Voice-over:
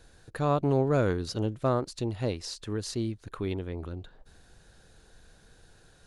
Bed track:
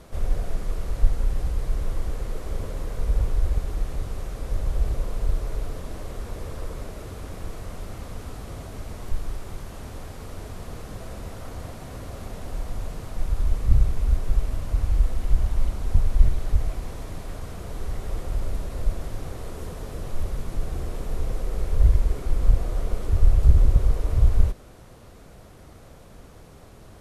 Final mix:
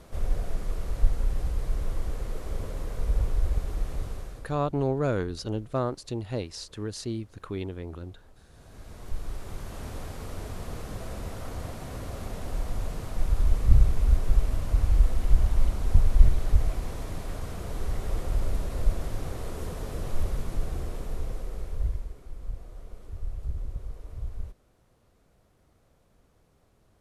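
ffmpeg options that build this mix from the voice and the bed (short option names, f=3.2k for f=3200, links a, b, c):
-filter_complex "[0:a]adelay=4100,volume=-1.5dB[a];[1:a]volume=20dB,afade=t=out:st=4.04:d=0.55:silence=0.1,afade=t=in:st=8.49:d=1.37:silence=0.0707946,afade=t=out:st=20.18:d=1.97:silence=0.133352[b];[a][b]amix=inputs=2:normalize=0"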